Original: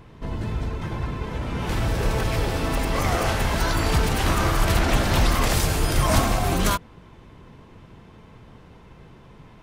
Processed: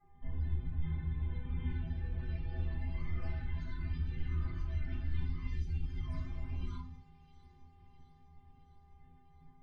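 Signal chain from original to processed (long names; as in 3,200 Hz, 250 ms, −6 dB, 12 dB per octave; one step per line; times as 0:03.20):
downward expander −39 dBFS
guitar amp tone stack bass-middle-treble 6-0-2
downward compressor 6 to 1, threshold −41 dBFS, peak gain reduction 13 dB
hum with harmonics 400 Hz, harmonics 5, −73 dBFS −4 dB per octave
spectral peaks only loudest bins 64
high-frequency loss of the air 250 metres
stiff-string resonator 75 Hz, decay 0.51 s, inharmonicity 0.03
delay with a high-pass on its return 659 ms, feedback 62%, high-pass 3,500 Hz, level −12.5 dB
rectangular room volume 290 cubic metres, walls furnished, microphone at 6.3 metres
level +7 dB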